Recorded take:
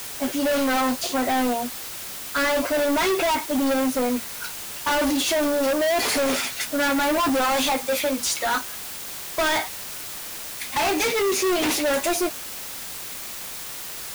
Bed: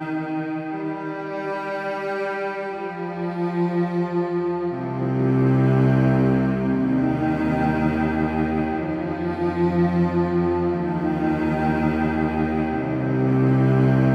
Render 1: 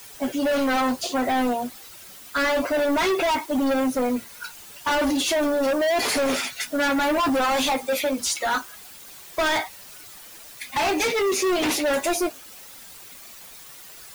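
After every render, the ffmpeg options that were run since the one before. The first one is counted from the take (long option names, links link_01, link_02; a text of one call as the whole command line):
ffmpeg -i in.wav -af "afftdn=noise_reduction=11:noise_floor=-35" out.wav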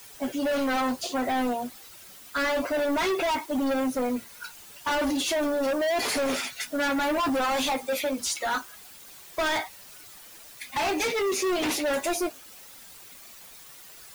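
ffmpeg -i in.wav -af "volume=-4dB" out.wav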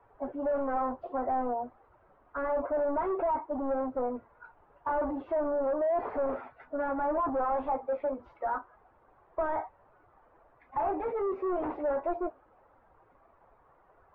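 ffmpeg -i in.wav -af "lowpass=frequency=1100:width=0.5412,lowpass=frequency=1100:width=1.3066,equalizer=frequency=200:width=0.95:gain=-12" out.wav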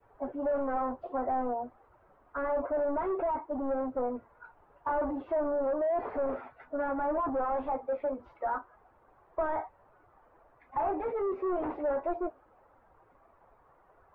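ffmpeg -i in.wav -af "adynamicequalizer=threshold=0.0112:dfrequency=970:dqfactor=1.2:tfrequency=970:tqfactor=1.2:attack=5:release=100:ratio=0.375:range=1.5:mode=cutabove:tftype=bell" out.wav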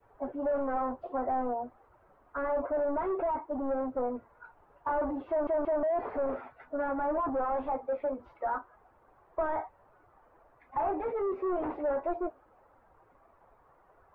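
ffmpeg -i in.wav -filter_complex "[0:a]asplit=4[link_01][link_02][link_03][link_04];[link_01]atrim=end=5.472[link_05];[link_02]atrim=start=5.288:end=5.472[link_06];[link_03]atrim=start=5.288:end=5.472[link_07];[link_04]atrim=start=5.828[link_08];[link_05][link_06]acrossfade=duration=0.004:curve1=hsin:curve2=hsin[link_09];[link_09][link_07]acrossfade=duration=0.004:curve1=hsin:curve2=hsin[link_10];[link_10][link_08]acrossfade=duration=0.004:curve1=hsin:curve2=hsin" out.wav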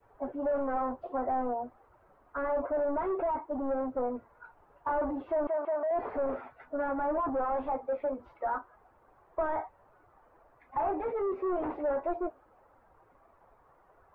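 ffmpeg -i in.wav -filter_complex "[0:a]asettb=1/sr,asplit=3[link_01][link_02][link_03];[link_01]atrim=end=5.474[link_04];[link_02]atrim=start=5.47:end=5.91,asetpts=PTS-STARTPTS,afade=type=in:duration=0.004:curve=qsin,afade=type=out:start_time=0.436:duration=0.004:curve=qsin,highpass=530,lowpass=2500[link_05];[link_03]atrim=start=5.906[link_06];[link_04][link_05]acrossfade=duration=0.004:curve1=hsin:curve2=qsin[link_07];[link_07][link_06]acrossfade=duration=0.004:curve1=qsin:curve2=hsin" out.wav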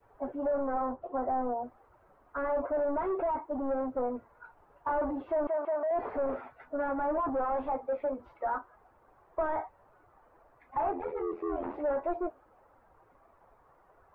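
ffmpeg -i in.wav -filter_complex "[0:a]asettb=1/sr,asplit=3[link_01][link_02][link_03];[link_01]atrim=end=0.474[link_04];[link_02]atrim=start=0.47:end=1.63,asetpts=PTS-STARTPTS,afade=type=in:duration=0.004:curve=qsin,afade=type=out:start_time=1.156:duration=0.004:curve=qsin,lowpass=1700[link_05];[link_03]atrim=start=1.626[link_06];[link_04][link_05]acrossfade=duration=0.004:curve1=hsin:curve2=qsin[link_07];[link_07][link_06]acrossfade=duration=0.004:curve1=qsin:curve2=hsin,asettb=1/sr,asplit=3[link_08][link_09][link_10];[link_08]atrim=end=10.914[link_11];[link_09]atrim=start=10.91:end=11.74,asetpts=PTS-STARTPTS,afade=type=in:duration=0.004:curve=qsin,afade=type=out:start_time=0.826:duration=0.004:curve=qsin,aeval=exprs='val(0)*sin(2*PI*42*n/s)':channel_layout=same[link_12];[link_10]atrim=start=11.736[link_13];[link_11][link_12]acrossfade=duration=0.004:curve1=hsin:curve2=qsin[link_14];[link_14][link_13]acrossfade=duration=0.004:curve1=qsin:curve2=hsin" out.wav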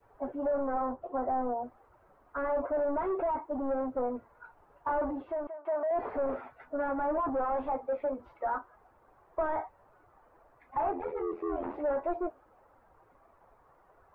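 ffmpeg -i in.wav -filter_complex "[0:a]asplit=2[link_01][link_02];[link_01]atrim=end=5.65,asetpts=PTS-STARTPTS,afade=type=out:start_time=4.88:duration=0.77:curve=qsin:silence=0.0668344[link_03];[link_02]atrim=start=5.65,asetpts=PTS-STARTPTS,afade=type=in:duration=0.004:curve=hsin:silence=0.0668344[link_04];[link_03][link_04]concat=n=2:v=0:a=1" out.wav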